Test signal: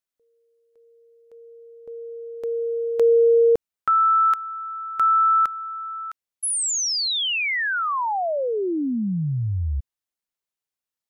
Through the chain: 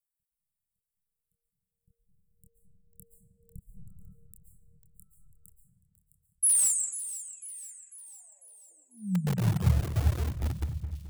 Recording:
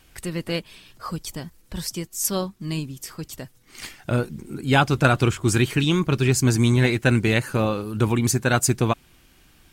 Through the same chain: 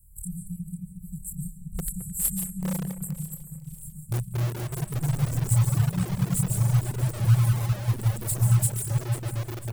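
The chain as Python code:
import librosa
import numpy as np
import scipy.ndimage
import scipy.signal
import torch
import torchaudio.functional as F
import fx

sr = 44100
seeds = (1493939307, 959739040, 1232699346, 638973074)

p1 = scipy.signal.sosfilt(scipy.signal.ellip(5, 1.0, 50, [190.0, 7600.0], 'bandstop', fs=sr, output='sos'), x)
p2 = fx.low_shelf(p1, sr, hz=78.0, db=4.0)
p3 = fx.rev_freeverb(p2, sr, rt60_s=4.3, hf_ratio=0.5, predelay_ms=95, drr_db=-3.5)
p4 = fx.chorus_voices(p3, sr, voices=6, hz=0.38, base_ms=27, depth_ms=1.8, mix_pct=35)
p5 = (np.mod(10.0 ** (21.0 / 20.0) * p4 + 1.0, 2.0) - 1.0) / 10.0 ** (21.0 / 20.0)
p6 = p4 + (p5 * 10.0 ** (-8.5 / 20.0))
p7 = fx.dereverb_blind(p6, sr, rt60_s=1.7)
p8 = fx.high_shelf(p7, sr, hz=7600.0, db=7.0)
p9 = p8 + fx.echo_split(p8, sr, split_hz=2700.0, low_ms=216, high_ms=496, feedback_pct=52, wet_db=-14, dry=0)
y = p9 * 10.0 ** (-2.5 / 20.0)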